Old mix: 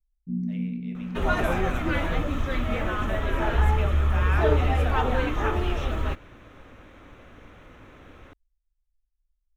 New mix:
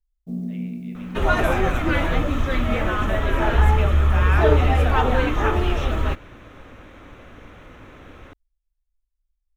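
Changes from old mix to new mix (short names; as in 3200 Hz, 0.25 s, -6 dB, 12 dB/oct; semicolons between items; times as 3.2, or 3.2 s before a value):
first sound: remove inverse Chebyshev low-pass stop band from 1000 Hz, stop band 60 dB; second sound +5.0 dB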